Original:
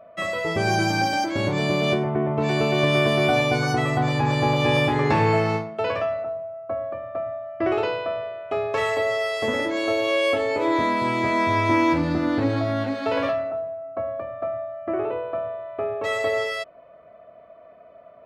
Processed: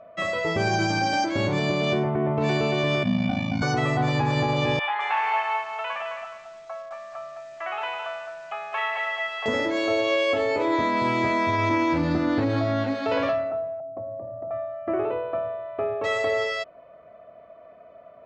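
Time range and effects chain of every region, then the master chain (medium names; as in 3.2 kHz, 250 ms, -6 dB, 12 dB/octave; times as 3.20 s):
3.03–3.62 s: FFT filter 140 Hz 0 dB, 230 Hz +14 dB, 360 Hz -30 dB, 790 Hz -4 dB, 1.3 kHz -12 dB, 2.5 kHz -5 dB, 5.6 kHz -9 dB, 9.7 kHz -17 dB + ring modulator 27 Hz
4.79–9.46 s: Chebyshev band-pass 790–3200 Hz, order 3 + bit-crushed delay 212 ms, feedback 35%, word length 8-bit, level -6 dB
13.80–14.51 s: Chebyshev band-pass 110–870 Hz, order 3 + compression 3:1, threshold -33 dBFS + bass shelf 140 Hz +11.5 dB
whole clip: peak limiter -14.5 dBFS; steep low-pass 7.6 kHz 48 dB/octave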